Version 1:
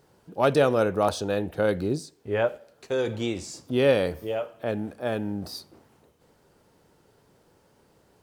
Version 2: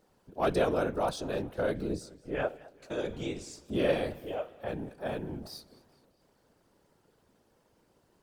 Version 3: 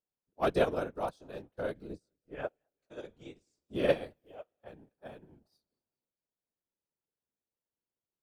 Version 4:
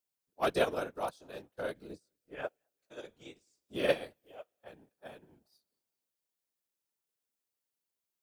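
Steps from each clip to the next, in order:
random phases in short frames; feedback echo with a swinging delay time 213 ms, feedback 49%, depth 137 cents, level −21.5 dB; level −7 dB
expander for the loud parts 2.5 to 1, over −46 dBFS; level +3 dB
spectral tilt +2 dB per octave

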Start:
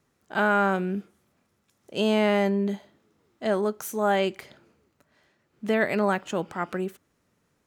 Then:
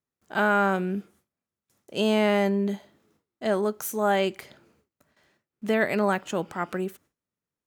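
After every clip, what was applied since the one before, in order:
noise gate with hold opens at −55 dBFS
high-shelf EQ 9,500 Hz +6 dB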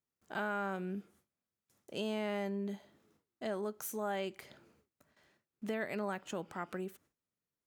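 downward compressor 2 to 1, threshold −37 dBFS, peak gain reduction 10.5 dB
level −4.5 dB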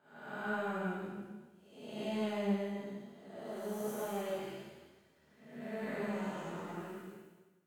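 spectrum smeared in time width 409 ms
four-comb reverb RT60 1.2 s, combs from 26 ms, DRR −8.5 dB
flanger 1.2 Hz, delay 9.9 ms, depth 5.6 ms, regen +42%
level −1.5 dB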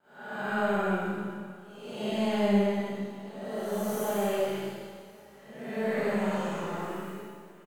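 repeating echo 563 ms, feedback 46%, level −19 dB
pitch vibrato 0.53 Hz 12 cents
four-comb reverb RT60 0.84 s, combs from 28 ms, DRR −9 dB

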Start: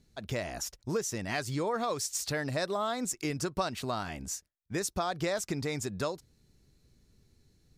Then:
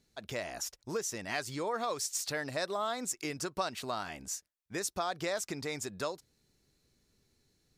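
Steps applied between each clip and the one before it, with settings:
low-shelf EQ 230 Hz −11.5 dB
level −1 dB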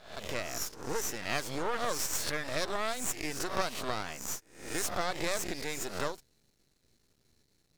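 peak hold with a rise ahead of every peak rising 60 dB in 0.55 s
half-wave rectification
level +3.5 dB

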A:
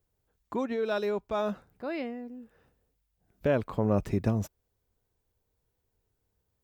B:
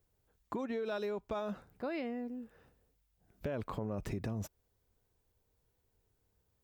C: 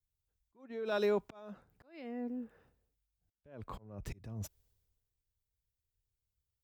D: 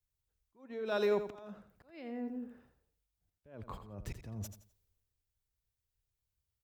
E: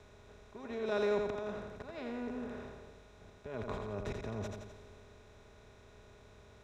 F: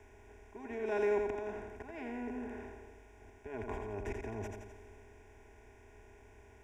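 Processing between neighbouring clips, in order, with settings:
brickwall limiter −26 dBFS, peak gain reduction 10 dB; downward compressor, threshold −35 dBFS, peak gain reduction 6 dB; level +1 dB
volume swells 572 ms; multiband upward and downward expander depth 70%; level +1 dB
repeating echo 85 ms, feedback 29%, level −10 dB
compressor on every frequency bin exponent 0.4; high-frequency loss of the air 85 metres; level −3 dB
phaser with its sweep stopped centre 820 Hz, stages 8; level +3 dB

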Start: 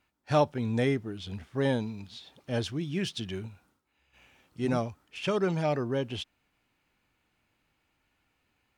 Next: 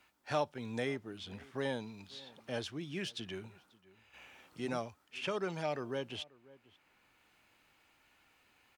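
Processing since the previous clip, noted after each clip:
low-shelf EQ 300 Hz −11 dB
slap from a distant wall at 92 metres, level −27 dB
multiband upward and downward compressor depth 40%
level −4.5 dB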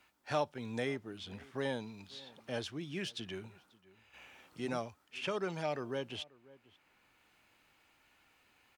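no processing that can be heard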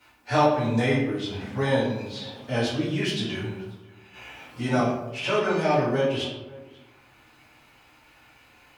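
convolution reverb RT60 0.95 s, pre-delay 4 ms, DRR −11 dB
level +2.5 dB

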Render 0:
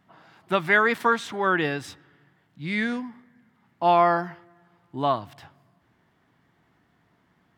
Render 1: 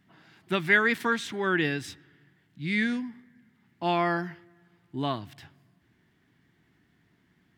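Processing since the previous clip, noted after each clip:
flat-topped bell 800 Hz −9 dB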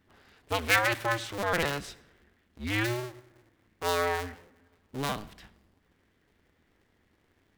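sub-harmonics by changed cycles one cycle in 2, inverted
convolution reverb RT60 0.65 s, pre-delay 46 ms, DRR 18 dB
level −2.5 dB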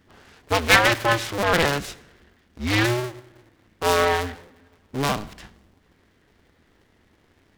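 short delay modulated by noise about 1,300 Hz, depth 0.044 ms
level +8.5 dB

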